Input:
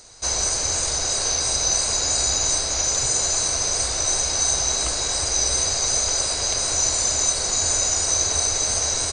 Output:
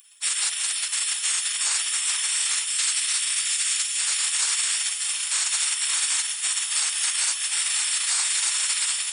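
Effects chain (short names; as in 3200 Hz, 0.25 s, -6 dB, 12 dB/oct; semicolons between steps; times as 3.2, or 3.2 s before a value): spectral gate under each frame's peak -25 dB weak; HPF 600 Hz 12 dB/oct, from 2.64 s 1400 Hz, from 3.97 s 650 Hz; tilt +4 dB/oct; limiter -19.5 dBFS, peak gain reduction 6.5 dB; diffused feedback echo 0.739 s, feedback 48%, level -10.5 dB; gain +6 dB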